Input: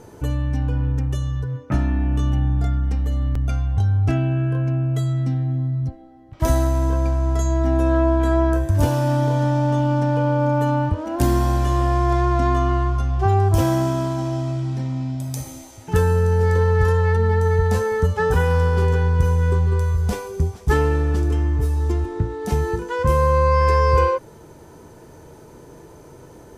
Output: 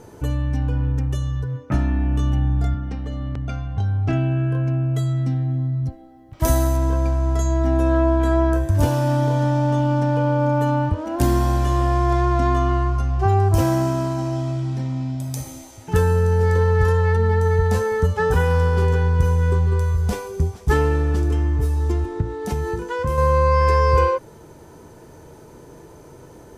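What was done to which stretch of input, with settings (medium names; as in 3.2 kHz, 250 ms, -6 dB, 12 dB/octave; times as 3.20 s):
2.74–4.13 s: band-pass 100–5000 Hz
5.86–6.77 s: treble shelf 8.7 kHz +11.5 dB
12.79–14.36 s: band-stop 3.4 kHz, Q 10
22.21–23.18 s: compression 2:1, threshold -21 dBFS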